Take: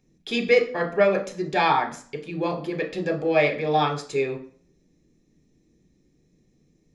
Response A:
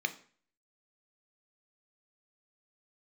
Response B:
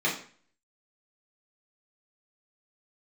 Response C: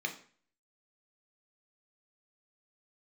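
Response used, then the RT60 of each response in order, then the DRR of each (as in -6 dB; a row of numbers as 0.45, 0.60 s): C; 0.45, 0.45, 0.45 s; 9.0, -6.0, 3.5 dB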